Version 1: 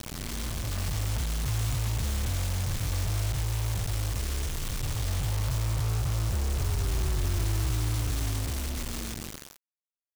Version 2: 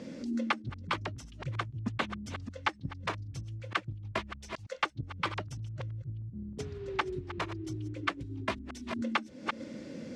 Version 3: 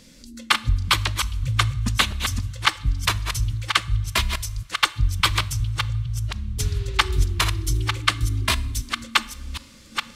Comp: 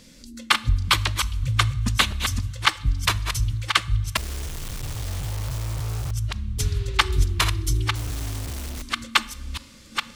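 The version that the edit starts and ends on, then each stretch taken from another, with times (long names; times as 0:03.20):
3
0:04.17–0:06.11: punch in from 1
0:07.95–0:08.82: punch in from 1
not used: 2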